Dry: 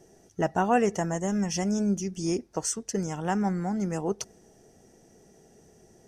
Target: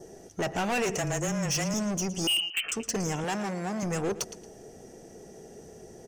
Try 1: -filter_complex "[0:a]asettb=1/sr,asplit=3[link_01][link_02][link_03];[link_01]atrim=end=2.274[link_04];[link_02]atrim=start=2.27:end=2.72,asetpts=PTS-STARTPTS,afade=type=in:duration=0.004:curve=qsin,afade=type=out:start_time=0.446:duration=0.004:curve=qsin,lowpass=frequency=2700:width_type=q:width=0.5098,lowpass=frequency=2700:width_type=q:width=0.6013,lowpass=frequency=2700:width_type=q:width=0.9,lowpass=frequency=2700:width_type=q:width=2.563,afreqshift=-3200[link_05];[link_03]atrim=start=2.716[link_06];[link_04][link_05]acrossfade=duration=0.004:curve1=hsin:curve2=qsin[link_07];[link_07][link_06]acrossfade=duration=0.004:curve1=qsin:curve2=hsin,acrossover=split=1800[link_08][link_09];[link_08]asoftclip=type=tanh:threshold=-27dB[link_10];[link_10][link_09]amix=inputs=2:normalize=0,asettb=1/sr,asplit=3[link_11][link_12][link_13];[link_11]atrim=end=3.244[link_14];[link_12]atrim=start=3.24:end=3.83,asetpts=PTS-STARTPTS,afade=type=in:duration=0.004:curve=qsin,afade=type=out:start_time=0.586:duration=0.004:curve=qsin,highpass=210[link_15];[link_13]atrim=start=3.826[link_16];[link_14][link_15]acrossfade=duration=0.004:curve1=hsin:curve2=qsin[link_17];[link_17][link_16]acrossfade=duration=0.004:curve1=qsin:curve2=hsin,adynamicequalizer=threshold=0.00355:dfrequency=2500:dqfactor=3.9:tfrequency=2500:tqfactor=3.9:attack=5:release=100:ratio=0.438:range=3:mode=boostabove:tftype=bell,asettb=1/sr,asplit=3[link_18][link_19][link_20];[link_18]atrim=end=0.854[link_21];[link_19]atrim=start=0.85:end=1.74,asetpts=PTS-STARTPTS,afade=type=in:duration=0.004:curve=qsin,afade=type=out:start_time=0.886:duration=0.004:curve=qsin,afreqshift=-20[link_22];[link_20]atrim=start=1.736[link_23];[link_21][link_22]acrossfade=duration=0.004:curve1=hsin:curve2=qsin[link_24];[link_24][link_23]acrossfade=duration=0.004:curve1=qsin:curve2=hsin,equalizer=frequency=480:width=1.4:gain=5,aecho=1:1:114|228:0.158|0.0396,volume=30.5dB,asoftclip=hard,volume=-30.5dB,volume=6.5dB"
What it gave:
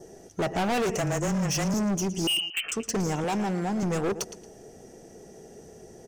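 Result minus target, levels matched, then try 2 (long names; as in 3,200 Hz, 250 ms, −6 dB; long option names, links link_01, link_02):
soft clipping: distortion −5 dB
-filter_complex "[0:a]asettb=1/sr,asplit=3[link_01][link_02][link_03];[link_01]atrim=end=2.274[link_04];[link_02]atrim=start=2.27:end=2.72,asetpts=PTS-STARTPTS,afade=type=in:duration=0.004:curve=qsin,afade=type=out:start_time=0.446:duration=0.004:curve=qsin,lowpass=frequency=2700:width_type=q:width=0.5098,lowpass=frequency=2700:width_type=q:width=0.6013,lowpass=frequency=2700:width_type=q:width=0.9,lowpass=frequency=2700:width_type=q:width=2.563,afreqshift=-3200[link_05];[link_03]atrim=start=2.716[link_06];[link_04][link_05]acrossfade=duration=0.004:curve1=hsin:curve2=qsin[link_07];[link_07][link_06]acrossfade=duration=0.004:curve1=qsin:curve2=hsin,acrossover=split=1800[link_08][link_09];[link_08]asoftclip=type=tanh:threshold=-36dB[link_10];[link_10][link_09]amix=inputs=2:normalize=0,asettb=1/sr,asplit=3[link_11][link_12][link_13];[link_11]atrim=end=3.244[link_14];[link_12]atrim=start=3.24:end=3.83,asetpts=PTS-STARTPTS,afade=type=in:duration=0.004:curve=qsin,afade=type=out:start_time=0.586:duration=0.004:curve=qsin,highpass=210[link_15];[link_13]atrim=start=3.826[link_16];[link_14][link_15]acrossfade=duration=0.004:curve1=hsin:curve2=qsin[link_17];[link_17][link_16]acrossfade=duration=0.004:curve1=qsin:curve2=hsin,adynamicequalizer=threshold=0.00355:dfrequency=2500:dqfactor=3.9:tfrequency=2500:tqfactor=3.9:attack=5:release=100:ratio=0.438:range=3:mode=boostabove:tftype=bell,asettb=1/sr,asplit=3[link_18][link_19][link_20];[link_18]atrim=end=0.854[link_21];[link_19]atrim=start=0.85:end=1.74,asetpts=PTS-STARTPTS,afade=type=in:duration=0.004:curve=qsin,afade=type=out:start_time=0.886:duration=0.004:curve=qsin,afreqshift=-20[link_22];[link_20]atrim=start=1.736[link_23];[link_21][link_22]acrossfade=duration=0.004:curve1=hsin:curve2=qsin[link_24];[link_24][link_23]acrossfade=duration=0.004:curve1=qsin:curve2=hsin,equalizer=frequency=480:width=1.4:gain=5,aecho=1:1:114|228:0.158|0.0396,volume=30.5dB,asoftclip=hard,volume=-30.5dB,volume=6.5dB"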